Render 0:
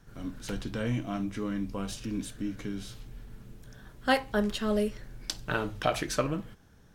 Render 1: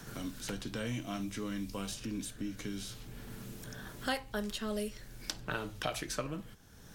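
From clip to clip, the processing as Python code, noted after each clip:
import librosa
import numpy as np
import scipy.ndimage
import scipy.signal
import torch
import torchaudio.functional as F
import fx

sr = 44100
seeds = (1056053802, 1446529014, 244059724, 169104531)

y = fx.high_shelf(x, sr, hz=3400.0, db=8.5)
y = fx.band_squash(y, sr, depth_pct=70)
y = F.gain(torch.from_numpy(y), -7.0).numpy()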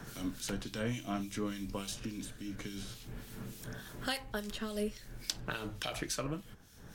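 y = fx.harmonic_tremolo(x, sr, hz=3.5, depth_pct=70, crossover_hz=2300.0)
y = F.gain(torch.from_numpy(y), 3.5).numpy()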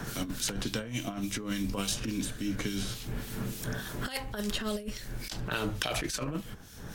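y = fx.over_compress(x, sr, threshold_db=-39.0, ratio=-0.5)
y = F.gain(torch.from_numpy(y), 7.5).numpy()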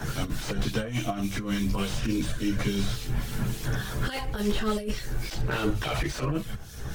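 y = fx.chorus_voices(x, sr, voices=6, hz=0.85, base_ms=14, depth_ms=1.5, mix_pct=60)
y = fx.slew_limit(y, sr, full_power_hz=29.0)
y = F.gain(torch.from_numpy(y), 8.0).numpy()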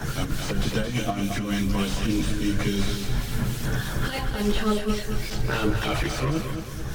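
y = fx.echo_feedback(x, sr, ms=220, feedback_pct=43, wet_db=-7)
y = F.gain(torch.from_numpy(y), 2.5).numpy()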